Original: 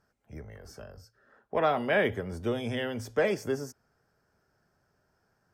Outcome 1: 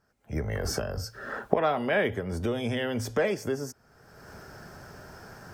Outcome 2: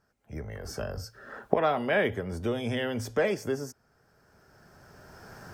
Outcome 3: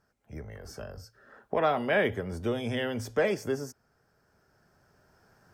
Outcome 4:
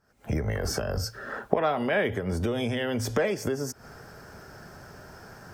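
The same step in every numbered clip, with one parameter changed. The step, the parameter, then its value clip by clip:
recorder AGC, rising by: 34 dB/s, 14 dB/s, 5.6 dB/s, 90 dB/s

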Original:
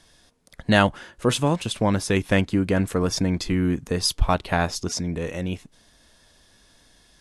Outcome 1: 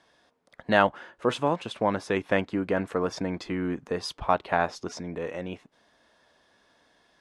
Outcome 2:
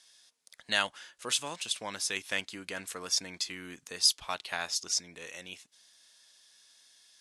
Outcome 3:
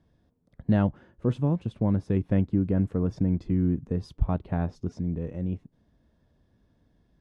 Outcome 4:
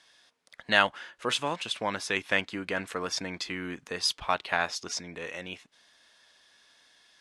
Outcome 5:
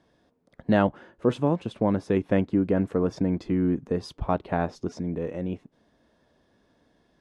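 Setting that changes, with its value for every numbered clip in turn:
band-pass filter, frequency: 850 Hz, 6.3 kHz, 120 Hz, 2.3 kHz, 340 Hz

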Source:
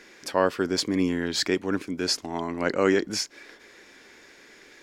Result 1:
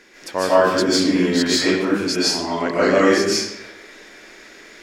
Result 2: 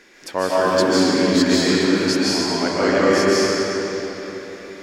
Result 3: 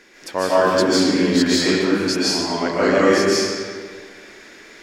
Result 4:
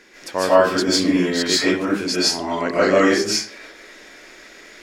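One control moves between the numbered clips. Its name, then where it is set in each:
algorithmic reverb, RT60: 0.86 s, 4 s, 1.8 s, 0.41 s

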